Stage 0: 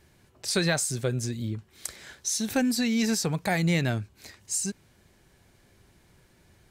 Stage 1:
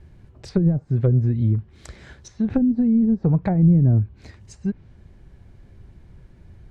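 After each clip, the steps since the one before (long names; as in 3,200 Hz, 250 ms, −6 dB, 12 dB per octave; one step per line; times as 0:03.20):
treble cut that deepens with the level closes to 320 Hz, closed at −21 dBFS
RIAA equalisation playback
level +1.5 dB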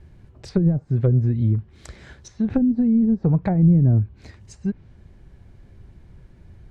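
no processing that can be heard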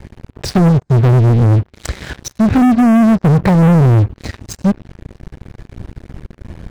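leveller curve on the samples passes 5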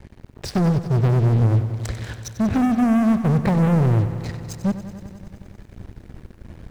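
feedback echo at a low word length 94 ms, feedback 80%, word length 8 bits, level −13 dB
level −8.5 dB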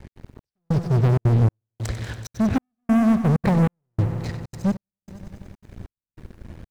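gate pattern "x.xxx....xxxxx" 192 BPM −60 dB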